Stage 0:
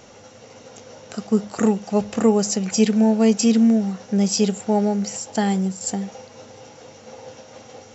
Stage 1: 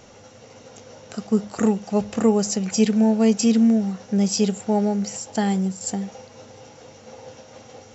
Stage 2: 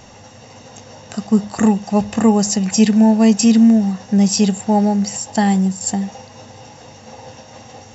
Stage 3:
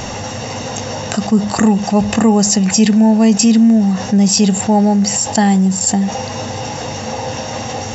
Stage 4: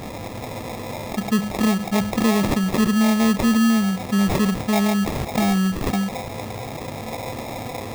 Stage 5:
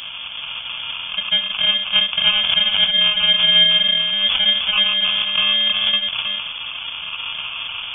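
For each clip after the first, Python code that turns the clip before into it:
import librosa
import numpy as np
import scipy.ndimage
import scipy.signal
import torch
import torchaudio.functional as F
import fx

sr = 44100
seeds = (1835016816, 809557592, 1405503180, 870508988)

y1 = fx.low_shelf(x, sr, hz=100.0, db=6.0)
y1 = F.gain(torch.from_numpy(y1), -2.0).numpy()
y2 = y1 + 0.43 * np.pad(y1, (int(1.1 * sr / 1000.0), 0))[:len(y1)]
y2 = F.gain(torch.from_numpy(y2), 5.5).numpy()
y3 = fx.env_flatten(y2, sr, amount_pct=50)
y4 = fx.sample_hold(y3, sr, seeds[0], rate_hz=1500.0, jitter_pct=0)
y4 = F.gain(torch.from_numpy(y4), -7.5).numpy()
y5 = y4 + 10.0 ** (-4.5 / 20.0) * np.pad(y4, (int(318 * sr / 1000.0), 0))[:len(y4)]
y5 = fx.freq_invert(y5, sr, carrier_hz=3400)
y5 = F.gain(torch.from_numpy(y5), 1.0).numpy()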